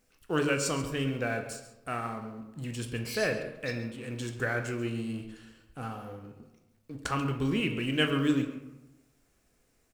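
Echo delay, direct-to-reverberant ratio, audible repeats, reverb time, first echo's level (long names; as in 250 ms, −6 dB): 137 ms, 4.5 dB, 1, 1.0 s, −15.0 dB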